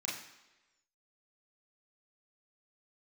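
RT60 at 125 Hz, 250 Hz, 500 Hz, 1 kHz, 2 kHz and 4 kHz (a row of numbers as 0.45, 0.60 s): 0.80, 0.95, 1.1, 1.0, 1.1, 1.0 s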